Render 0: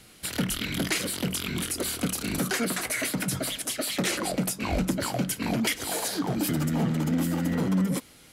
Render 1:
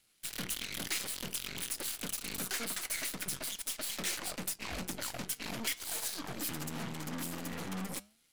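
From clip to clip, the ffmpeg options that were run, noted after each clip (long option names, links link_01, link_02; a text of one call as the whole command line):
ffmpeg -i in.wav -af "aeval=exprs='0.168*(cos(1*acos(clip(val(0)/0.168,-1,1)))-cos(1*PI/2))+0.0376*(cos(5*acos(clip(val(0)/0.168,-1,1)))-cos(5*PI/2))+0.0422*(cos(7*acos(clip(val(0)/0.168,-1,1)))-cos(7*PI/2))+0.0335*(cos(8*acos(clip(val(0)/0.168,-1,1)))-cos(8*PI/2))':channel_layout=same,flanger=delay=3.3:depth=6.8:regen=-89:speed=0.46:shape=triangular,tiltshelf=frequency=1400:gain=-5.5,volume=-8.5dB" out.wav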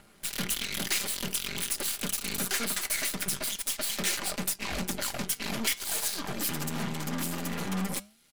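ffmpeg -i in.wav -filter_complex "[0:a]aecho=1:1:5:0.35,acrossover=split=1500[link_01][link_02];[link_01]acompressor=mode=upward:threshold=-50dB:ratio=2.5[link_03];[link_03][link_02]amix=inputs=2:normalize=0,volume=6dB" out.wav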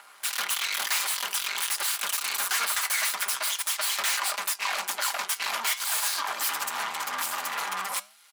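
ffmpeg -i in.wav -af "aeval=exprs='0.2*sin(PI/2*3.55*val(0)/0.2)':channel_layout=same,highpass=frequency=1000:width_type=q:width=2.1,volume=-8dB" out.wav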